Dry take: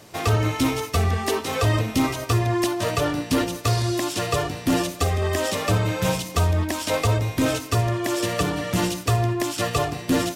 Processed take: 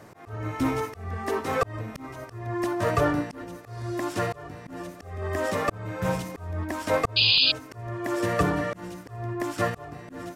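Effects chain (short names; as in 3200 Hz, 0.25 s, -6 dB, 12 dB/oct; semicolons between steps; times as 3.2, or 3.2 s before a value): auto swell 0.599 s; resonant high shelf 2300 Hz -8.5 dB, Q 1.5; painted sound noise, 7.16–7.52, 2400–5000 Hz -20 dBFS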